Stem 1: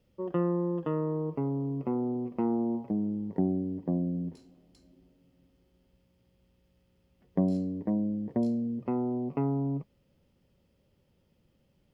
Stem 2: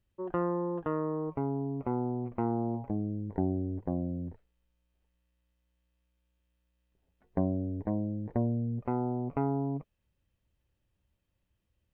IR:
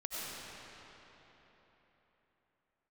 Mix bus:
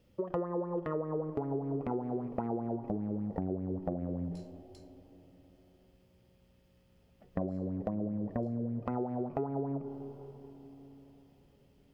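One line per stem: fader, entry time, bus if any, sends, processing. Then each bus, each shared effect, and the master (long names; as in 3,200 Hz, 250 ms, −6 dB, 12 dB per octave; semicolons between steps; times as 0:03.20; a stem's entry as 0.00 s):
+3.0 dB, 0.00 s, no send, hum removal 87.9 Hz, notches 2; downward compressor, threshold −38 dBFS, peak gain reduction 15 dB
−6.5 dB, 0.00 s, send −18.5 dB, tilt shelving filter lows +8 dB, about 1,400 Hz; transient designer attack −1 dB, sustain −6 dB; auto-filter bell 5.1 Hz 380–2,300 Hz +15 dB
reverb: on, RT60 4.0 s, pre-delay 55 ms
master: downward compressor 6 to 1, threshold −31 dBFS, peak gain reduction 12 dB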